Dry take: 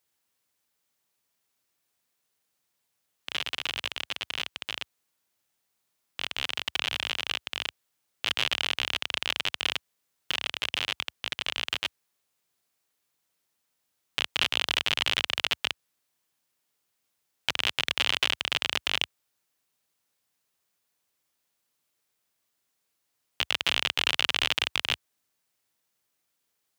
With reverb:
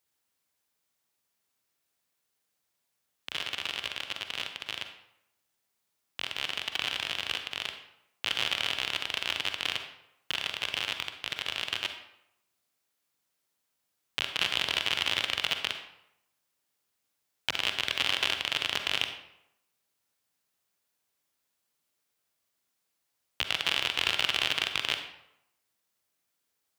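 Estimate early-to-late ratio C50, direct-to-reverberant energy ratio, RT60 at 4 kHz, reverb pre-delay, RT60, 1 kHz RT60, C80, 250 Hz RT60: 7.5 dB, 6.0 dB, 0.55 s, 39 ms, 0.85 s, 0.85 s, 10.0 dB, 0.80 s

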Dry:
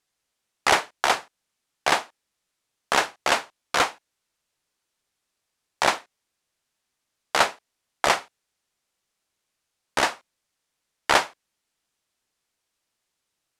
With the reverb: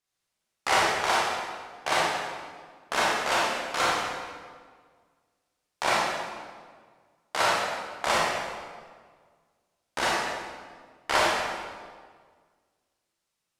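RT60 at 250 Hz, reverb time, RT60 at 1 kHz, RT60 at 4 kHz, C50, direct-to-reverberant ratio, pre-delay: 1.9 s, 1.7 s, 1.6 s, 1.3 s, -2.5 dB, -7.0 dB, 24 ms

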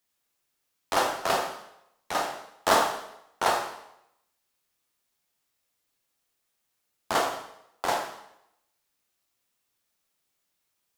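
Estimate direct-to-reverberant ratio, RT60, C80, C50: 1.0 dB, 0.80 s, 8.5 dB, 5.5 dB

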